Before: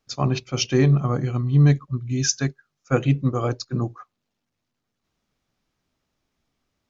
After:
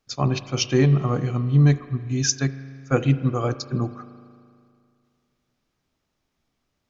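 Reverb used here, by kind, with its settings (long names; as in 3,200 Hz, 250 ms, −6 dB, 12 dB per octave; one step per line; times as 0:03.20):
spring reverb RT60 2.3 s, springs 37 ms, chirp 45 ms, DRR 13 dB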